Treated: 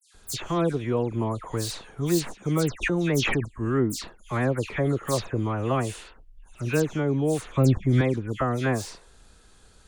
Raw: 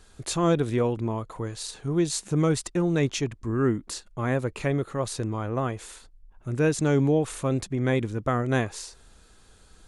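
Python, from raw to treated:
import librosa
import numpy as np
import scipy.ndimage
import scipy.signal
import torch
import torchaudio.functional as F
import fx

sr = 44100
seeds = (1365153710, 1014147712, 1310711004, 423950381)

y = fx.tracing_dist(x, sr, depth_ms=0.053)
y = fx.peak_eq(y, sr, hz=2800.0, db=7.5, octaves=0.34, at=(5.49, 6.68))
y = fx.rider(y, sr, range_db=3, speed_s=0.5)
y = fx.low_shelf(y, sr, hz=210.0, db=11.5, at=(7.43, 7.87))
y = fx.dispersion(y, sr, late='lows', ms=144.0, hz=2900.0)
y = fx.pre_swell(y, sr, db_per_s=23.0, at=(2.81, 3.44), fade=0.02)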